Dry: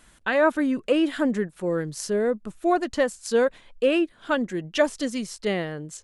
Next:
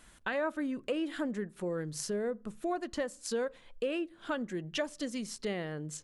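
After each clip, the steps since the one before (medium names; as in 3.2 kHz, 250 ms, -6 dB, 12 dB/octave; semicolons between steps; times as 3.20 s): compression 2.5:1, threshold -32 dBFS, peak gain reduction 11.5 dB; on a send at -22.5 dB: reverberation RT60 0.50 s, pre-delay 3 ms; on the sum: trim -3 dB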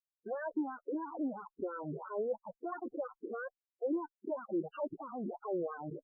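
Schmitt trigger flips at -40.5 dBFS; wah-wah 3 Hz 320–1300 Hz, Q 2.4; loudest bins only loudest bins 8; trim +7 dB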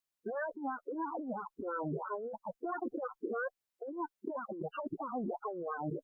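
compressor with a negative ratio -40 dBFS, ratio -1; trim +2.5 dB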